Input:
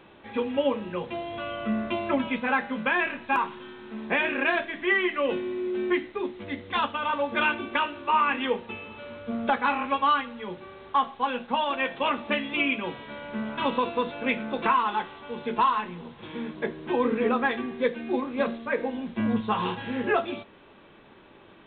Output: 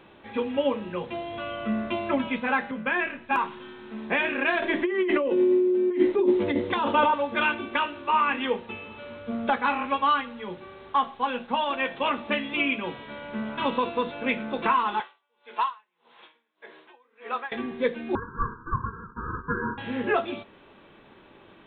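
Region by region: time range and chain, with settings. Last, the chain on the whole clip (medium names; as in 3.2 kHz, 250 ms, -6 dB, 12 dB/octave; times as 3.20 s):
2.71–3.31 s: low-pass 3 kHz + peaking EQ 930 Hz -4 dB 0.72 oct + three bands expanded up and down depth 40%
4.62–7.14 s: dynamic bell 300 Hz, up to +8 dB, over -40 dBFS, Q 0.83 + compressor with a negative ratio -29 dBFS + small resonant body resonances 380/540/910 Hz, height 9 dB, ringing for 30 ms
15.00–17.52 s: high-pass 750 Hz + logarithmic tremolo 1.7 Hz, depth 34 dB
18.15–19.78 s: square wave that keeps the level + brick-wall FIR band-pass 320–1100 Hz + ring modulator 590 Hz
whole clip: none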